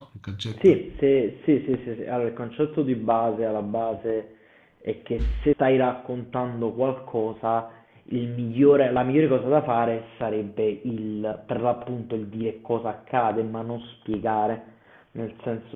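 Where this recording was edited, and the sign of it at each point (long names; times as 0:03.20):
0:05.53: cut off before it has died away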